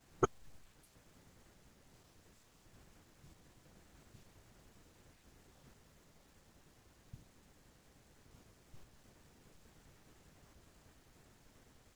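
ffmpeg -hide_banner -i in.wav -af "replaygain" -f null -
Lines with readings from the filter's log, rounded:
track_gain = +49.1 dB
track_peak = 0.124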